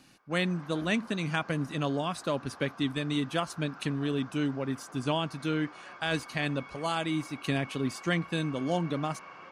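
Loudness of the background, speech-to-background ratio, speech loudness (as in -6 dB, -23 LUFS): -48.0 LUFS, 16.5 dB, -31.5 LUFS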